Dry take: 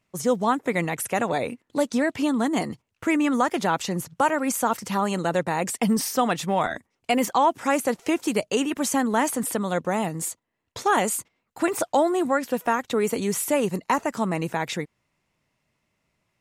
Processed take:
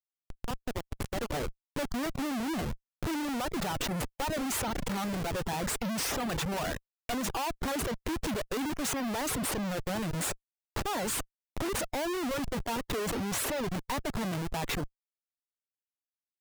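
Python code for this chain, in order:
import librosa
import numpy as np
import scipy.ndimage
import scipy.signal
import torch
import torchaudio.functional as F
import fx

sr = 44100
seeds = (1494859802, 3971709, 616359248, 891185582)

y = fx.fade_in_head(x, sr, length_s=3.21)
y = fx.schmitt(y, sr, flips_db=-31.5)
y = fx.dereverb_blind(y, sr, rt60_s=0.53)
y = F.gain(torch.from_numpy(y), -5.5).numpy()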